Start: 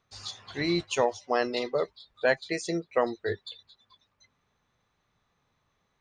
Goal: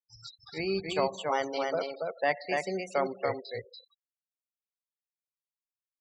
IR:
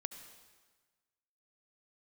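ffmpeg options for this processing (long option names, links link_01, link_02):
-filter_complex "[0:a]aecho=1:1:284:0.668,asplit=2[link_01][link_02];[1:a]atrim=start_sample=2205[link_03];[link_02][link_03]afir=irnorm=-1:irlink=0,volume=-2.5dB[link_04];[link_01][link_04]amix=inputs=2:normalize=0,afftfilt=real='re*gte(hypot(re,im),0.0251)':imag='im*gte(hypot(re,im),0.0251)':win_size=1024:overlap=0.75,asetrate=49501,aresample=44100,atempo=0.890899,acrossover=split=4100[link_05][link_06];[link_06]acompressor=threshold=-39dB:ratio=4:attack=1:release=60[link_07];[link_05][link_07]amix=inputs=2:normalize=0,volume=-7.5dB"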